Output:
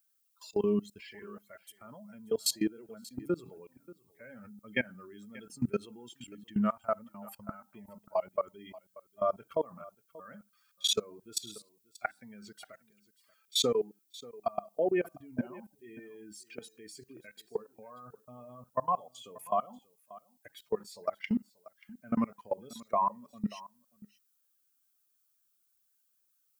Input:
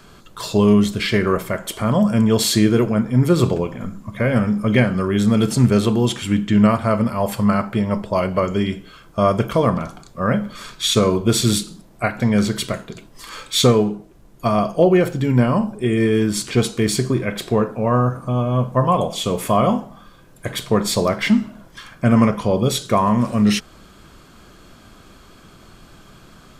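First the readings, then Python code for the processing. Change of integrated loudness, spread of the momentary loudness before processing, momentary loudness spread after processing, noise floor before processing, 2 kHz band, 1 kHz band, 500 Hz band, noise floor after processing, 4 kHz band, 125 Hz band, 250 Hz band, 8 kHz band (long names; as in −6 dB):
−15.5 dB, 10 LU, 22 LU, −47 dBFS, −17.0 dB, −14.0 dB, −16.0 dB, −74 dBFS, −13.5 dB, −28.0 dB, −20.5 dB, −14.5 dB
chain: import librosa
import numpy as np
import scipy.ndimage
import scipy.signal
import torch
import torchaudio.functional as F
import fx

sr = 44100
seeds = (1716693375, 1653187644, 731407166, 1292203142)

y = fx.bin_expand(x, sr, power=2.0)
y = scipy.signal.sosfilt(scipy.signal.butter(2, 300.0, 'highpass', fs=sr, output='sos'), y)
y = fx.level_steps(y, sr, step_db=23)
y = fx.dmg_noise_colour(y, sr, seeds[0], colour='violet', level_db=-71.0)
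y = y + 10.0 ** (-20.0 / 20.0) * np.pad(y, (int(584 * sr / 1000.0), 0))[:len(y)]
y = F.gain(torch.from_numpy(y), -3.5).numpy()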